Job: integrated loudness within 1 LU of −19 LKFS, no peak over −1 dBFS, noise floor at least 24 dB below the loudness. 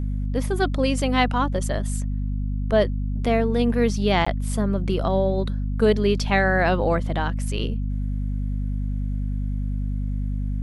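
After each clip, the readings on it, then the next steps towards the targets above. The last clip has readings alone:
number of dropouts 1; longest dropout 15 ms; mains hum 50 Hz; hum harmonics up to 250 Hz; level of the hum −23 dBFS; integrated loudness −23.5 LKFS; sample peak −7.0 dBFS; target loudness −19.0 LKFS
→ repair the gap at 0:04.25, 15 ms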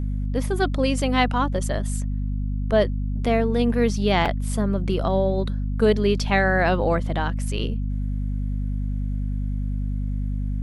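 number of dropouts 0; mains hum 50 Hz; hum harmonics up to 250 Hz; level of the hum −23 dBFS
→ mains-hum notches 50/100/150/200/250 Hz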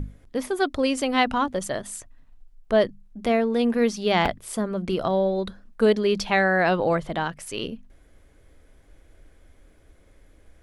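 mains hum none found; integrated loudness −24.0 LKFS; sample peak −7.5 dBFS; target loudness −19.0 LKFS
→ level +5 dB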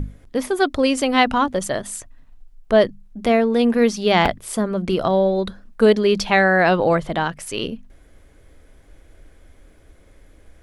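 integrated loudness −19.0 LKFS; sample peak −2.5 dBFS; background noise floor −51 dBFS

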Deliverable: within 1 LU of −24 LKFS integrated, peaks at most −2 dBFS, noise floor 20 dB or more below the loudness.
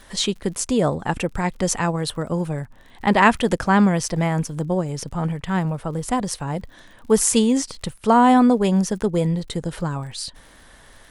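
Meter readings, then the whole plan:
crackle rate 44 per second; integrated loudness −21.0 LKFS; sample peak −1.5 dBFS; target loudness −24.0 LKFS
→ click removal
level −3 dB

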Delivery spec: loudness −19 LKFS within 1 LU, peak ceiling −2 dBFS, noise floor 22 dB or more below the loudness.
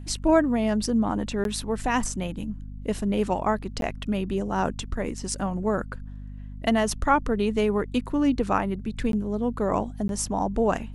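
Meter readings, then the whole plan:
number of dropouts 4; longest dropout 12 ms; mains hum 50 Hz; hum harmonics up to 250 Hz; level of the hum −35 dBFS; integrated loudness −26.0 LKFS; sample peak −7.5 dBFS; target loudness −19.0 LKFS
→ repair the gap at 0:01.44/0:03.81/0:09.12/0:10.08, 12 ms
mains-hum notches 50/100/150/200/250 Hz
level +7 dB
brickwall limiter −2 dBFS

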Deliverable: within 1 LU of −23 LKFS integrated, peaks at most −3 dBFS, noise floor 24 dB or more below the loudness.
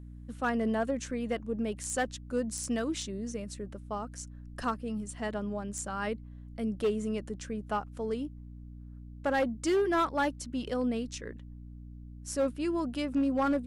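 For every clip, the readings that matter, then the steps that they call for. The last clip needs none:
share of clipped samples 0.8%; peaks flattened at −22.5 dBFS; mains hum 60 Hz; hum harmonics up to 300 Hz; level of the hum −44 dBFS; integrated loudness −33.0 LKFS; sample peak −22.5 dBFS; target loudness −23.0 LKFS
→ clipped peaks rebuilt −22.5 dBFS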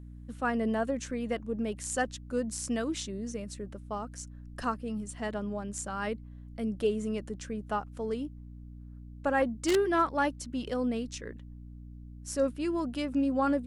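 share of clipped samples 0.0%; mains hum 60 Hz; hum harmonics up to 300 Hz; level of the hum −44 dBFS
→ mains-hum notches 60/120/180/240/300 Hz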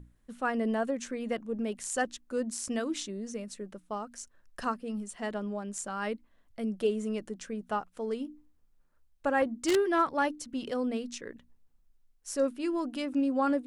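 mains hum none found; integrated loudness −32.5 LKFS; sample peak −13.5 dBFS; target loudness −23.0 LKFS
→ level +9.5 dB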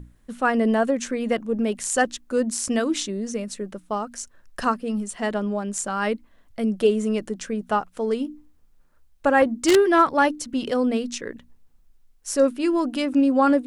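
integrated loudness −23.5 LKFS; sample peak −4.0 dBFS; background noise floor −57 dBFS

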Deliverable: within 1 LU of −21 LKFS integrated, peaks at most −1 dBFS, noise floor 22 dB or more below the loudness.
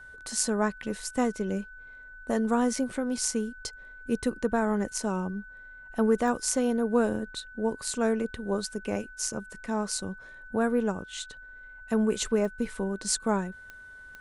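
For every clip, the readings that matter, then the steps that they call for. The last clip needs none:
number of clicks 4; interfering tone 1,500 Hz; level of the tone −45 dBFS; integrated loudness −29.5 LKFS; sample peak −8.5 dBFS; target loudness −21.0 LKFS
→ click removal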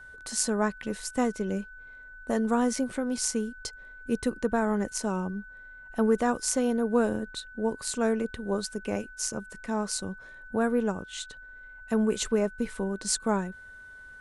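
number of clicks 0; interfering tone 1,500 Hz; level of the tone −45 dBFS
→ notch filter 1,500 Hz, Q 30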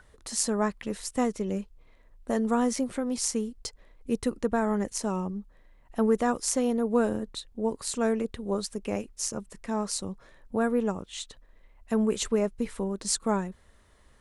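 interfering tone none found; integrated loudness −29.5 LKFS; sample peak −8.5 dBFS; target loudness −21.0 LKFS
→ level +8.5 dB
brickwall limiter −1 dBFS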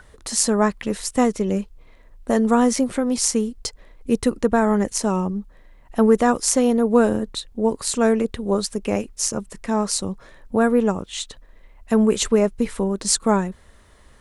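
integrated loudness −21.0 LKFS; sample peak −1.0 dBFS; background noise floor −50 dBFS

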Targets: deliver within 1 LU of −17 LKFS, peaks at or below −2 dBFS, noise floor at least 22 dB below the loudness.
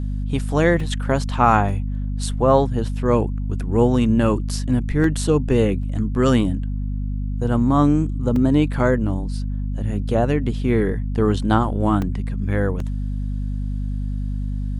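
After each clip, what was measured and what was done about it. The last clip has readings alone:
number of dropouts 7; longest dropout 2.6 ms; mains hum 50 Hz; hum harmonics up to 250 Hz; level of the hum −22 dBFS; integrated loudness −21.0 LKFS; sample peak −2.5 dBFS; target loudness −17.0 LKFS
→ repair the gap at 0:00.80/0:01.69/0:05.04/0:05.83/0:08.36/0:12.02/0:12.80, 2.6 ms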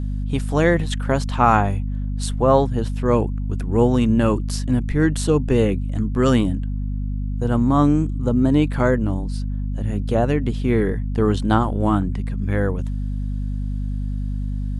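number of dropouts 0; mains hum 50 Hz; hum harmonics up to 250 Hz; level of the hum −22 dBFS
→ mains-hum notches 50/100/150/200/250 Hz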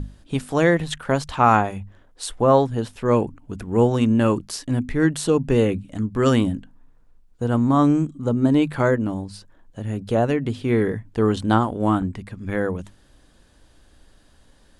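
mains hum none found; integrated loudness −21.0 LKFS; sample peak −3.5 dBFS; target loudness −17.0 LKFS
→ level +4 dB
brickwall limiter −2 dBFS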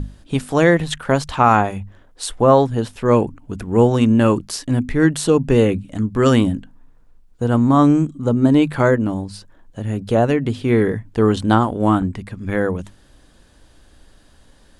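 integrated loudness −17.5 LKFS; sample peak −2.0 dBFS; background noise floor −51 dBFS

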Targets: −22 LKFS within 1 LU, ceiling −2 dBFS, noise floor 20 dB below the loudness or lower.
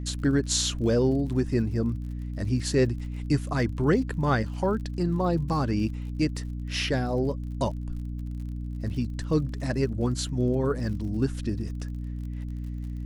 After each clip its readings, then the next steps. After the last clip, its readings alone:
crackle rate 48 per second; mains hum 60 Hz; hum harmonics up to 300 Hz; level of the hum −31 dBFS; integrated loudness −28.0 LKFS; sample peak −10.0 dBFS; target loudness −22.0 LKFS
→ click removal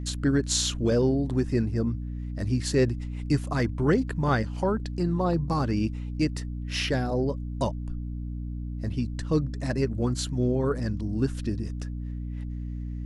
crackle rate 0.077 per second; mains hum 60 Hz; hum harmonics up to 300 Hz; level of the hum −31 dBFS
→ hum removal 60 Hz, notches 5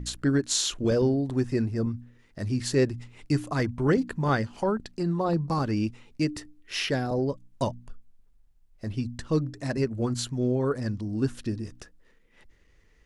mains hum none found; integrated loudness −28.0 LKFS; sample peak −10.0 dBFS; target loudness −22.0 LKFS
→ level +6 dB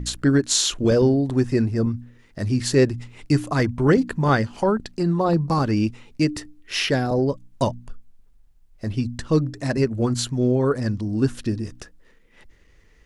integrated loudness −22.0 LKFS; sample peak −4.0 dBFS; background noise floor −54 dBFS

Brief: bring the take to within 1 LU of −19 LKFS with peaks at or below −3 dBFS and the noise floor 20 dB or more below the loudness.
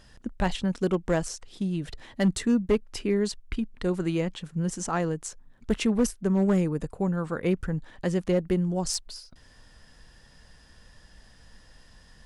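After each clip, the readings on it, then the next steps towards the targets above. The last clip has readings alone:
share of clipped samples 0.3%; peaks flattened at −16.0 dBFS; integrated loudness −28.0 LKFS; sample peak −16.0 dBFS; target loudness −19.0 LKFS
→ clipped peaks rebuilt −16 dBFS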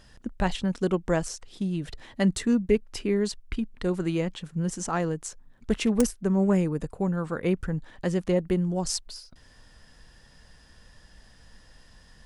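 share of clipped samples 0.0%; integrated loudness −27.5 LKFS; sample peak −7.0 dBFS; target loudness −19.0 LKFS
→ level +8.5 dB
brickwall limiter −3 dBFS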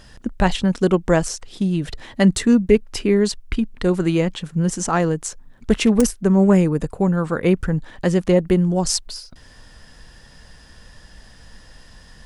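integrated loudness −19.0 LKFS; sample peak −3.0 dBFS; background noise floor −47 dBFS

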